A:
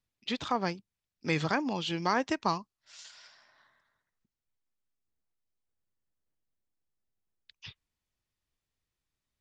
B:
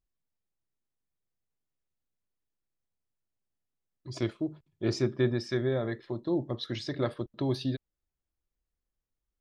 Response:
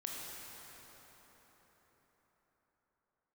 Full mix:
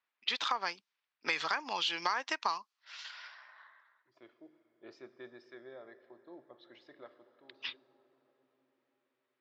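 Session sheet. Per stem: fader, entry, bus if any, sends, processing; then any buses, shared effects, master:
+1.0 dB, 0.00 s, no send, high-order bell 2.3 kHz +8.5 dB 3 oct
-16.5 dB, 0.00 s, send -10.5 dB, auto duck -15 dB, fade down 0.55 s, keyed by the first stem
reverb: on, RT60 5.0 s, pre-delay 18 ms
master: level-controlled noise filter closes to 2.1 kHz, open at -24 dBFS; high-pass 530 Hz 12 dB/octave; compression 5:1, threshold -30 dBFS, peak gain reduction 13 dB

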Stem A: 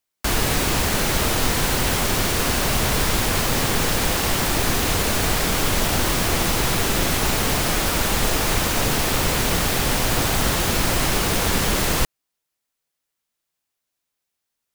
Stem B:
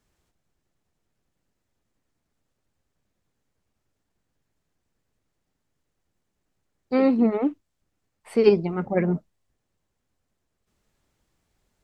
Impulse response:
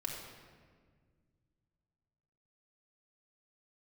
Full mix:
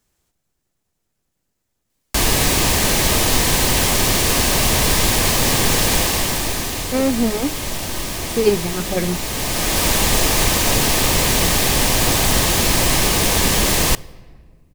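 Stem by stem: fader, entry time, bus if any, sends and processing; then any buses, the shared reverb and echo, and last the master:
+2.5 dB, 1.90 s, send -19 dB, treble shelf 10 kHz -10.5 dB; band-stop 1.4 kHz, Q 5.9; auto duck -11 dB, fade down 0.95 s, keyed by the second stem
+1.0 dB, 0.00 s, no send, none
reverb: on, RT60 1.7 s, pre-delay 3 ms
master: treble shelf 5.6 kHz +11 dB

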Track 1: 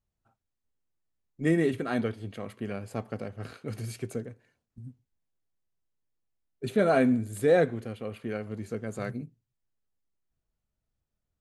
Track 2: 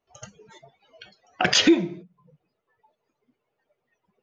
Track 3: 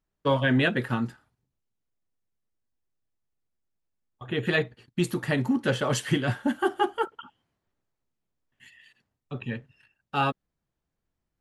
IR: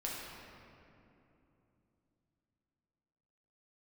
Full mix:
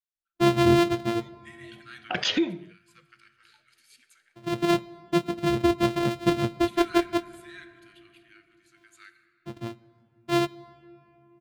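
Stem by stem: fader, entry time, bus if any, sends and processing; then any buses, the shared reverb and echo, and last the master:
-10.0 dB, 0.00 s, send -8 dB, steep high-pass 1.3 kHz 48 dB/octave; rotary cabinet horn 0.85 Hz
-7.5 dB, 0.70 s, no send, low-pass 3 kHz 6 dB/octave
-0.5 dB, 0.15 s, send -20 dB, sorted samples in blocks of 128 samples; spectral contrast expander 1.5:1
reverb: on, RT60 3.0 s, pre-delay 6 ms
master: peaking EQ 3.5 kHz +6 dB 1 oct

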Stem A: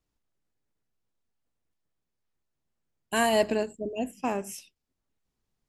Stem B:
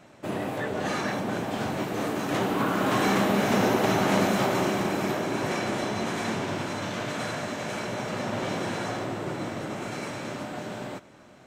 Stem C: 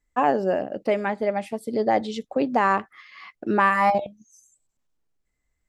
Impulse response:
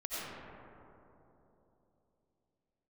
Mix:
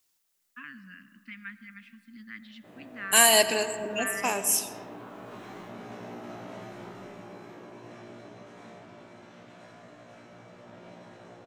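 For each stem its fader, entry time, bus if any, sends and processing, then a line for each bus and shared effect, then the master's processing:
+2.0 dB, 0.00 s, send -13 dB, tilt EQ +4.5 dB/octave
-16.0 dB, 2.40 s, send -5 dB, treble shelf 7.3 kHz -8.5 dB; feedback comb 59 Hz, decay 0.38 s, harmonics all, mix 90%
-8.5 dB, 0.40 s, send -17 dB, inverse Chebyshev band-stop 380–860 Hz, stop band 50 dB; three-band isolator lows -24 dB, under 240 Hz, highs -22 dB, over 3.4 kHz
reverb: on, RT60 3.3 s, pre-delay 50 ms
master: none

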